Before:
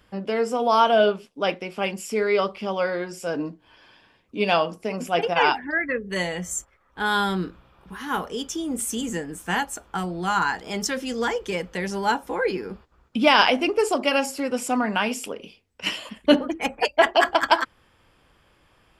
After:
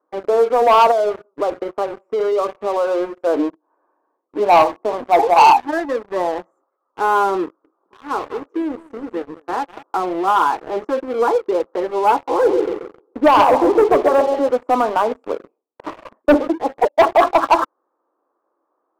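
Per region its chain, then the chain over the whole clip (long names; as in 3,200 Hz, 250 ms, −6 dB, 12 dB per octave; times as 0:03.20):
0:00.91–0:03.21: downward compressor 8 to 1, threshold −24 dBFS + single-tap delay 179 ms −23.5 dB
0:04.39–0:06.51: mu-law and A-law mismatch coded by mu + comb filter 1.1 ms, depth 43% + dynamic equaliser 860 Hz, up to +7 dB, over −33 dBFS, Q 4.3
0:07.44–0:09.83: Bessel high-pass filter 240 Hz + parametric band 830 Hz −5.5 dB 1.9 octaves + single-tap delay 199 ms −12.5 dB
0:12.14–0:14.49: high-pass filter 170 Hz 6 dB per octave + delay with a band-pass on its return 134 ms, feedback 40%, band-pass 430 Hz, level −5.5 dB
0:16.37–0:16.77: high-pass filter 54 Hz + head-to-tape spacing loss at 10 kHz 34 dB
whole clip: elliptic band-pass filter 310–1,200 Hz, stop band 50 dB; leveller curve on the samples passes 3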